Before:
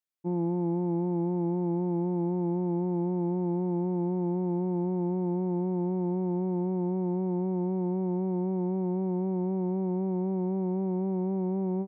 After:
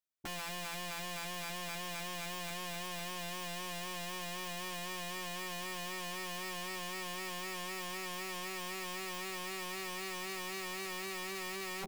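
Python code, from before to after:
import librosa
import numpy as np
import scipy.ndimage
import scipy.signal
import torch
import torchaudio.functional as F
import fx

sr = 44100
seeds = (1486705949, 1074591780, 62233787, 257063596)

y = (np.mod(10.0 ** (32.5 / 20.0) * x + 1.0, 2.0) - 1.0) / 10.0 ** (32.5 / 20.0)
y = fx.doubler(y, sr, ms=13.0, db=-7.5)
y = y * 10.0 ** (-4.0 / 20.0)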